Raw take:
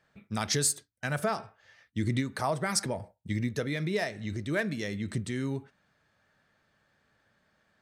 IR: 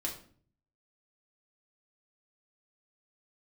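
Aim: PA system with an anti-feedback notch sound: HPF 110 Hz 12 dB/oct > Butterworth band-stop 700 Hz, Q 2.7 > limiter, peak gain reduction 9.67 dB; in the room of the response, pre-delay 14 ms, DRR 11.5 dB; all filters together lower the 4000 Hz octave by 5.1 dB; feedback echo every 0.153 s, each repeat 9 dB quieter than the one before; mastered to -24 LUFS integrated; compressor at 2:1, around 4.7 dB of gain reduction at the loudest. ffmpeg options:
-filter_complex "[0:a]equalizer=f=4k:t=o:g=-7,acompressor=threshold=-33dB:ratio=2,aecho=1:1:153|306|459|612:0.355|0.124|0.0435|0.0152,asplit=2[a][b];[1:a]atrim=start_sample=2205,adelay=14[c];[b][c]afir=irnorm=-1:irlink=0,volume=-13dB[d];[a][d]amix=inputs=2:normalize=0,highpass=110,asuperstop=centerf=700:order=8:qfactor=2.7,volume=14.5dB,alimiter=limit=-14dB:level=0:latency=1"

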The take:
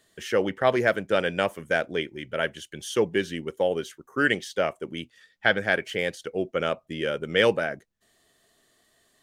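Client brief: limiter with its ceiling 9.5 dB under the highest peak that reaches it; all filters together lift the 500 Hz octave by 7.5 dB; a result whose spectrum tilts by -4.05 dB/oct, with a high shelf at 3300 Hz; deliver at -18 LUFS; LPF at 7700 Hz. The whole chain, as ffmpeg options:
-af "lowpass=7.7k,equalizer=f=500:t=o:g=9,highshelf=f=3.3k:g=-8.5,volume=7dB,alimiter=limit=-6dB:level=0:latency=1"

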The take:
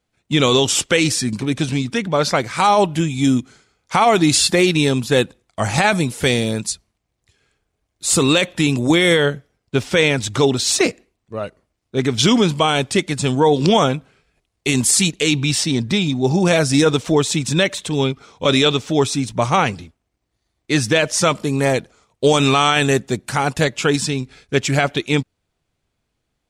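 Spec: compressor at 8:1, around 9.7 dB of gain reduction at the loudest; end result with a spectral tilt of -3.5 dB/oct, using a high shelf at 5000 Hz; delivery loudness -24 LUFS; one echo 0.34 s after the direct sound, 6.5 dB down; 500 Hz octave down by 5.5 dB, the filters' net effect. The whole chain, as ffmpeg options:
-af "equalizer=f=500:t=o:g=-7,highshelf=f=5k:g=4,acompressor=threshold=-20dB:ratio=8,aecho=1:1:340:0.473"

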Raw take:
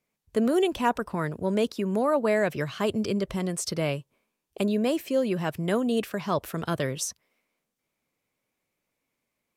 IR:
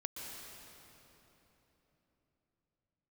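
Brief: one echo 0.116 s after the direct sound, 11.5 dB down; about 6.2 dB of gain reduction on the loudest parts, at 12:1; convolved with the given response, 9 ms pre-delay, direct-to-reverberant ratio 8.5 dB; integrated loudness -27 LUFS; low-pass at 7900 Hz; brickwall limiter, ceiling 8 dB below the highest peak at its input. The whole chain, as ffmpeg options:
-filter_complex "[0:a]lowpass=7.9k,acompressor=threshold=-25dB:ratio=12,alimiter=limit=-21dB:level=0:latency=1,aecho=1:1:116:0.266,asplit=2[a][b];[1:a]atrim=start_sample=2205,adelay=9[c];[b][c]afir=irnorm=-1:irlink=0,volume=-8dB[d];[a][d]amix=inputs=2:normalize=0,volume=4dB"

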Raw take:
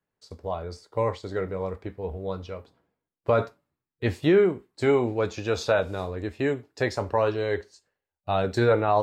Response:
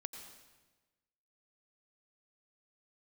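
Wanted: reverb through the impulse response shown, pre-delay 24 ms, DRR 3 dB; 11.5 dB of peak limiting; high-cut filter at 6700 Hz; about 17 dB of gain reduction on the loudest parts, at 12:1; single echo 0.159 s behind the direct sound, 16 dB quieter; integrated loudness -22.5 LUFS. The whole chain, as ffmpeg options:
-filter_complex "[0:a]lowpass=6.7k,acompressor=threshold=-33dB:ratio=12,alimiter=level_in=6dB:limit=-24dB:level=0:latency=1,volume=-6dB,aecho=1:1:159:0.158,asplit=2[a][b];[1:a]atrim=start_sample=2205,adelay=24[c];[b][c]afir=irnorm=-1:irlink=0,volume=-0.5dB[d];[a][d]amix=inputs=2:normalize=0,volume=17.5dB"

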